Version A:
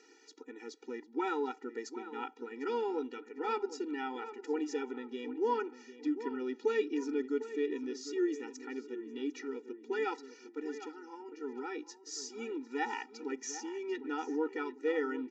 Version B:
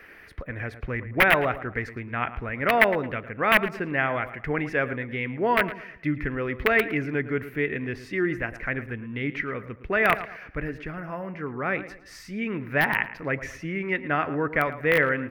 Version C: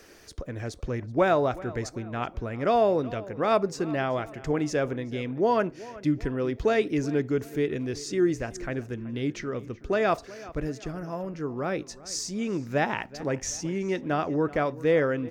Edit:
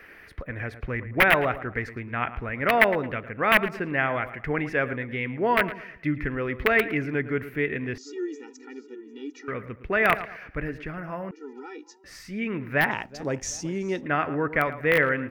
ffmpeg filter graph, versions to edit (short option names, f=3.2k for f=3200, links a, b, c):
-filter_complex "[0:a]asplit=2[a][b];[1:a]asplit=4[c][d][e][f];[c]atrim=end=7.982[g];[a]atrim=start=7.978:end=9.482[h];[d]atrim=start=9.478:end=11.312[i];[b]atrim=start=11.308:end=12.042[j];[e]atrim=start=12.038:end=12.912[k];[2:a]atrim=start=12.908:end=14.062[l];[f]atrim=start=14.058[m];[g][h]acrossfade=d=0.004:c1=hsin:c2=hsin[n];[n][i]acrossfade=d=0.004:c1=hsin:c2=hsin[o];[o][j]acrossfade=d=0.004:c1=hsin:c2=hsin[p];[p][k]acrossfade=d=0.004:c1=hsin:c2=hsin[q];[q][l]acrossfade=d=0.004:c1=hsin:c2=hsin[r];[r][m]acrossfade=d=0.004:c1=hsin:c2=hsin"